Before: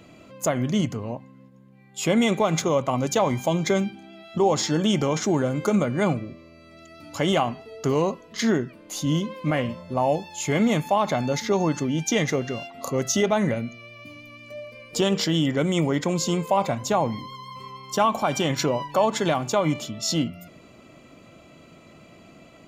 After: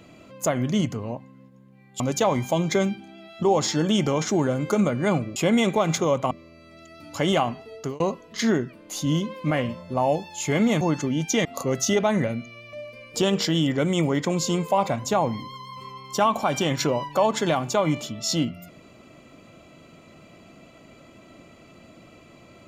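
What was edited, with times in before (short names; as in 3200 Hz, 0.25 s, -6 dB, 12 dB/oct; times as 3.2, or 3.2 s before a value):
2–2.95 move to 6.31
7.75–8 fade out
10.81–11.59 cut
12.23–12.72 cut
14–14.52 cut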